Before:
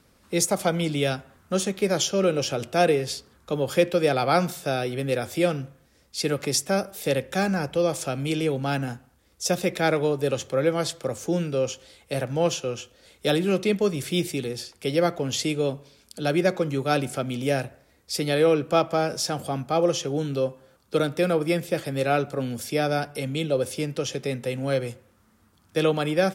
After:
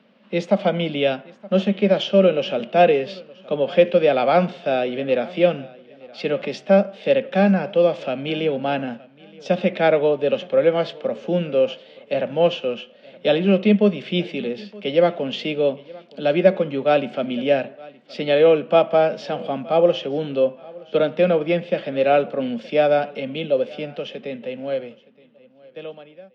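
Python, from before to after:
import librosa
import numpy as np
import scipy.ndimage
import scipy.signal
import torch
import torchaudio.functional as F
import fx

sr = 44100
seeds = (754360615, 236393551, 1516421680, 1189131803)

p1 = fx.fade_out_tail(x, sr, length_s=3.53)
p2 = fx.cabinet(p1, sr, low_hz=190.0, low_slope=24, high_hz=3500.0, hz=(210.0, 310.0, 600.0, 1300.0, 2900.0), db=(10, -5, 8, -3, 7))
p3 = p2 + fx.echo_feedback(p2, sr, ms=920, feedback_pct=31, wet_db=-23.0, dry=0)
y = fx.hpss(p3, sr, part='harmonic', gain_db=4)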